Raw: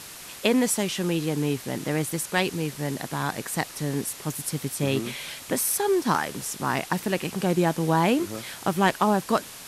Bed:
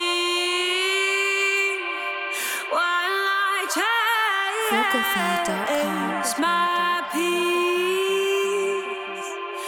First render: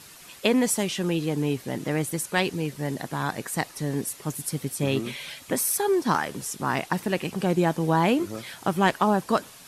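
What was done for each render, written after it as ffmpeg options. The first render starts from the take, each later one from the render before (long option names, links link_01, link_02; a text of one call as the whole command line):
ffmpeg -i in.wav -af "afftdn=noise_reduction=8:noise_floor=-42" out.wav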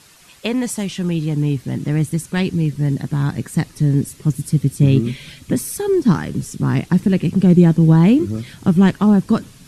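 ffmpeg -i in.wav -af "lowpass=11000,asubboost=boost=10.5:cutoff=230" out.wav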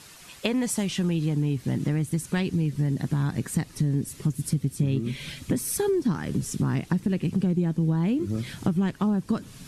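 ffmpeg -i in.wav -af "acompressor=threshold=-22dB:ratio=6" out.wav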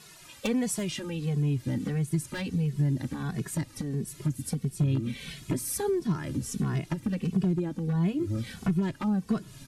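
ffmpeg -i in.wav -filter_complex "[0:a]aeval=exprs='0.15*(abs(mod(val(0)/0.15+3,4)-2)-1)':channel_layout=same,asplit=2[link_01][link_02];[link_02]adelay=2.3,afreqshift=-1.5[link_03];[link_01][link_03]amix=inputs=2:normalize=1" out.wav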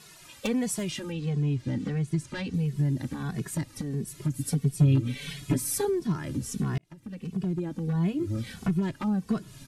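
ffmpeg -i in.wav -filter_complex "[0:a]asettb=1/sr,asplit=3[link_01][link_02][link_03];[link_01]atrim=end=1.124[link_04];[link_02]atrim=start=1.12:end=2.54,asetpts=PTS-STARTPTS,afade=type=in:duration=0.004:curve=qsin,afade=type=out:start_time=1.416:duration=0.004:curve=qsin,lowpass=6500[link_05];[link_03]atrim=start=2.536[link_06];[link_04][link_05]acrossfade=duration=0.004:curve1=hsin:curve2=qsin[link_07];[link_07][link_06]acrossfade=duration=0.004:curve1=qsin:curve2=hsin,asettb=1/sr,asplit=3[link_08][link_09][link_10];[link_08]atrim=end=4.334[link_11];[link_09]atrim=start=4.33:end=5.85,asetpts=PTS-STARTPTS,afade=type=in:duration=0.004:curve=qsin,afade=type=out:start_time=1.516:duration=0.004:curve=qsin,aecho=1:1:7:0.9,atrim=end_sample=67032[link_12];[link_10]atrim=start=5.846[link_13];[link_11][link_12]acrossfade=duration=0.004:curve1=hsin:curve2=qsin[link_14];[link_14][link_13]acrossfade=duration=0.004:curve1=qsin:curve2=hsin,asplit=2[link_15][link_16];[link_15]atrim=end=6.78,asetpts=PTS-STARTPTS,afade=type=out:start_time=6.776:duration=0.004:curve=hsin[link_17];[link_16]atrim=start=6.78,asetpts=PTS-STARTPTS,afade=type=in:duration=1.02[link_18];[link_17][link_18]concat=n=2:v=0:a=1" out.wav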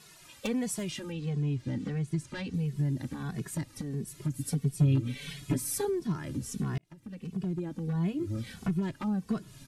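ffmpeg -i in.wav -af "volume=-3.5dB" out.wav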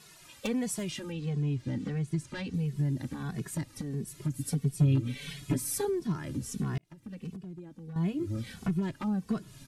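ffmpeg -i in.wav -filter_complex "[0:a]asplit=3[link_01][link_02][link_03];[link_01]atrim=end=7.362[link_04];[link_02]atrim=start=7.358:end=7.962,asetpts=PTS-STARTPTS,volume=-10.5dB[link_05];[link_03]atrim=start=7.958[link_06];[link_04][link_05]acrossfade=duration=0.004:curve1=hsin:curve2=hsin[link_07];[link_07][link_06]acrossfade=duration=0.004:curve1=hsin:curve2=hsin" out.wav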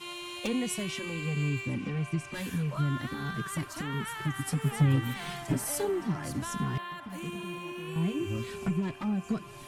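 ffmpeg -i in.wav -i bed.wav -filter_complex "[1:a]volume=-18dB[link_01];[0:a][link_01]amix=inputs=2:normalize=0" out.wav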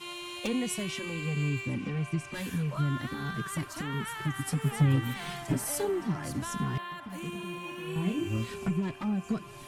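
ffmpeg -i in.wav -filter_complex "[0:a]asettb=1/sr,asplit=3[link_01][link_02][link_03];[link_01]atrim=end=7.614[link_04];[link_02]atrim=start=7.61:end=8.54,asetpts=PTS-STARTPTS,afade=type=in:duration=0.004:curve=qsin,afade=type=out:start_time=0.926:duration=0.004:curve=qsin,asplit=2[link_05][link_06];[link_06]adelay=27,volume=-4.5dB[link_07];[link_05][link_07]amix=inputs=2:normalize=0,atrim=end_sample=41013[link_08];[link_03]atrim=start=8.536[link_09];[link_04][link_08]acrossfade=duration=0.004:curve1=hsin:curve2=qsin[link_10];[link_10][link_09]acrossfade=duration=0.004:curve1=qsin:curve2=hsin" out.wav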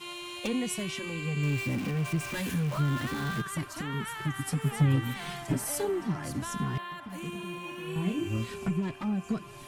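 ffmpeg -i in.wav -filter_complex "[0:a]asettb=1/sr,asplit=3[link_01][link_02][link_03];[link_01]atrim=end=1.434[link_04];[link_02]atrim=start=1.43:end=3.42,asetpts=PTS-STARTPTS,afade=type=in:duration=0.004:curve=qsin,afade=type=out:start_time=1.986:duration=0.004:curve=qsin,aeval=exprs='val(0)+0.5*0.0168*sgn(val(0))':channel_layout=same[link_05];[link_03]atrim=start=3.416[link_06];[link_04][link_05]acrossfade=duration=0.004:curve1=hsin:curve2=qsin[link_07];[link_07][link_06]acrossfade=duration=0.004:curve1=qsin:curve2=hsin" out.wav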